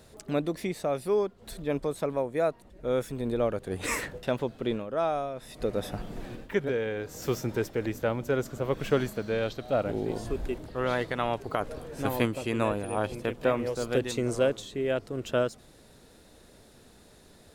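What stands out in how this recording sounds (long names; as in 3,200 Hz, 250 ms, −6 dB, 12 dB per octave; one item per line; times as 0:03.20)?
background noise floor −56 dBFS
spectral slope −5.0 dB per octave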